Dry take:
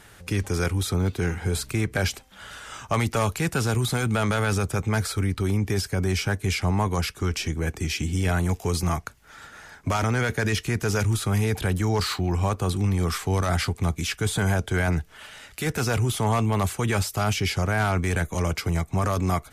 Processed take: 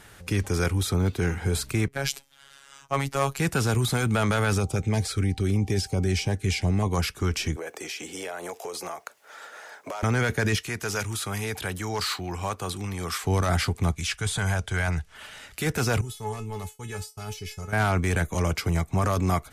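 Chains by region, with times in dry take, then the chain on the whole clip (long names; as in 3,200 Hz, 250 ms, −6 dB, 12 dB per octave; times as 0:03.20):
0:01.88–0:03.39: parametric band 150 Hz −5 dB 1.4 octaves + phases set to zero 138 Hz + multiband upward and downward expander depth 70%
0:04.59–0:06.92: parametric band 13,000 Hz −9.5 dB 0.44 octaves + steady tone 780 Hz −48 dBFS + notch on a step sequencer 6.3 Hz 840–1,700 Hz
0:07.56–0:10.03: high-pass with resonance 530 Hz, resonance Q 2.2 + downward compressor, threshold −31 dBFS + bit-depth reduction 12 bits, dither none
0:10.56–0:13.24: high-pass filter 54 Hz + low-shelf EQ 450 Hz −10.5 dB + hard clipping −18.5 dBFS
0:13.92–0:15.15: low-pass filter 11,000 Hz 24 dB per octave + parametric band 300 Hz −10 dB 1.9 octaves
0:16.01–0:17.73: downward expander −24 dBFS + bass and treble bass +6 dB, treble +7 dB + tuned comb filter 430 Hz, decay 0.2 s, mix 90%
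whole clip: no processing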